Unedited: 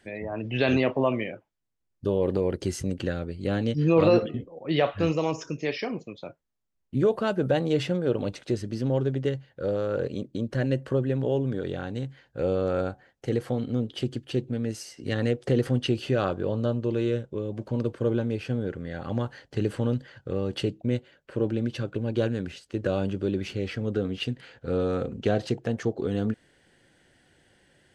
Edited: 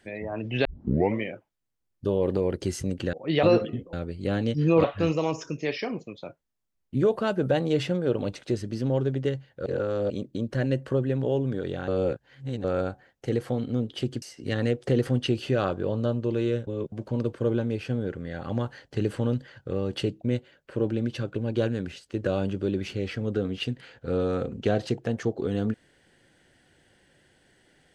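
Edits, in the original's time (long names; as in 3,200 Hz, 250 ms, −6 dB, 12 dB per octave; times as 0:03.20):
0:00.65: tape start 0.54 s
0:03.13–0:04.04: swap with 0:04.54–0:04.84
0:09.66–0:10.10: reverse
0:11.88–0:12.64: reverse
0:14.22–0:14.82: remove
0:17.27–0:17.52: reverse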